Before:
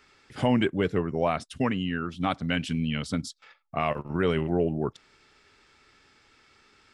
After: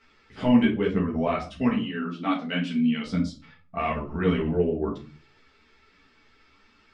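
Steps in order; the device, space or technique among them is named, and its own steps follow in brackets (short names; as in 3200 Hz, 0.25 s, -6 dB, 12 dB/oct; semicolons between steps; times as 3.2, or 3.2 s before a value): 1.76–3.05 HPF 190 Hz 24 dB/oct; shoebox room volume 230 m³, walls furnished, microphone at 1.6 m; string-machine ensemble chorus (ensemble effect; LPF 4900 Hz 12 dB/oct)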